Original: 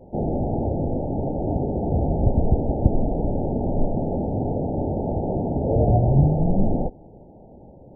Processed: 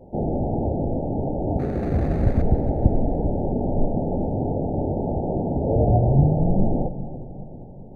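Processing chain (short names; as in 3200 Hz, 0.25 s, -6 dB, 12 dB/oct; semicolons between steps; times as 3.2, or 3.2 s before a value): 1.59–2.42 median filter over 41 samples; split-band echo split 410 Hz, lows 0.4 s, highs 0.278 s, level -13.5 dB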